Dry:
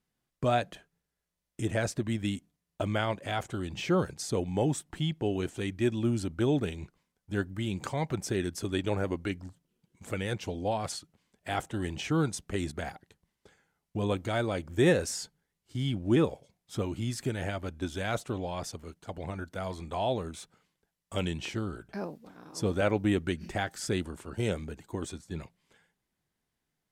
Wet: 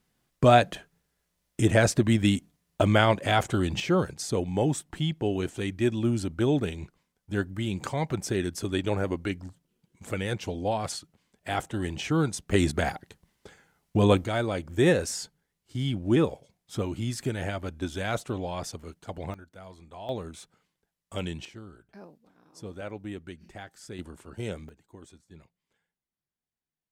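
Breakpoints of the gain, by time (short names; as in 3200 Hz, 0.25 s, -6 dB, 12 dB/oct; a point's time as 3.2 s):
+9 dB
from 3.8 s +2.5 dB
from 12.51 s +9.5 dB
from 14.24 s +2 dB
from 19.34 s -10.5 dB
from 20.09 s -1.5 dB
from 21.45 s -11 dB
from 23.99 s -4 dB
from 24.69 s -13 dB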